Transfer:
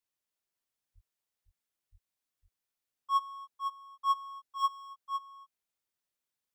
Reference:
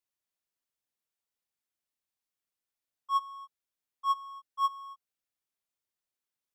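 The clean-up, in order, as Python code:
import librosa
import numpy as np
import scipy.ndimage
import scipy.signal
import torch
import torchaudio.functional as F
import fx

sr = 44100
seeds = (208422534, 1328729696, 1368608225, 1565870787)

y = fx.fix_deplosive(x, sr, at_s=(0.94, 1.91))
y = fx.fix_echo_inverse(y, sr, delay_ms=505, level_db=-7.0)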